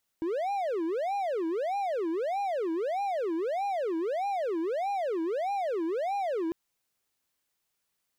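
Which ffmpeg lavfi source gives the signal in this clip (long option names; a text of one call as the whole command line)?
ffmpeg -f lavfi -i "aevalsrc='0.0531*(1-4*abs(mod((566*t-244/(2*PI*1.6)*sin(2*PI*1.6*t))+0.25,1)-0.5))':duration=6.3:sample_rate=44100" out.wav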